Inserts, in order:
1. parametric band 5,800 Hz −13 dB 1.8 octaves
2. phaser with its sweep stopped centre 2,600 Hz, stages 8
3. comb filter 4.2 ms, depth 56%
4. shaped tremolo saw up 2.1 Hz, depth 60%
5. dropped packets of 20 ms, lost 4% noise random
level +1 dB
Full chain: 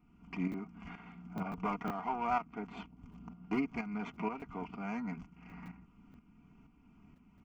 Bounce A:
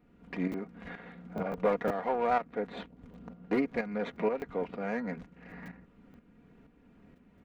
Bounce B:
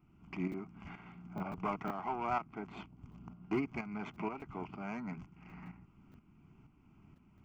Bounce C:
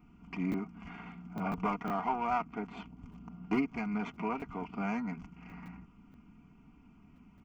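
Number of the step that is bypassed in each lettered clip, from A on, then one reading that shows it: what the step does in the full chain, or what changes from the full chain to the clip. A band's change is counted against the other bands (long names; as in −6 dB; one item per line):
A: 2, 500 Hz band +10.0 dB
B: 3, 500 Hz band +2.0 dB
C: 4, change in integrated loudness +3.0 LU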